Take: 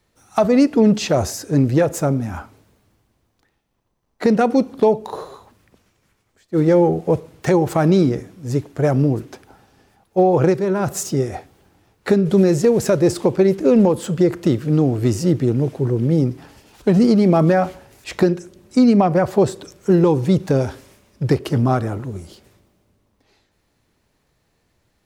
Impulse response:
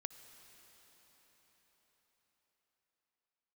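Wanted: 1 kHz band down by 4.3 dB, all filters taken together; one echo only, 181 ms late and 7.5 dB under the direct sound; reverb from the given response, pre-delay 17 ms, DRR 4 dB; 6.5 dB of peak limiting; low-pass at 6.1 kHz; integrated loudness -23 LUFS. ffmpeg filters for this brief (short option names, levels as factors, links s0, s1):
-filter_complex "[0:a]lowpass=6100,equalizer=f=1000:t=o:g=-6.5,alimiter=limit=0.282:level=0:latency=1,aecho=1:1:181:0.422,asplit=2[s0][s1];[1:a]atrim=start_sample=2205,adelay=17[s2];[s1][s2]afir=irnorm=-1:irlink=0,volume=0.891[s3];[s0][s3]amix=inputs=2:normalize=0,volume=0.668"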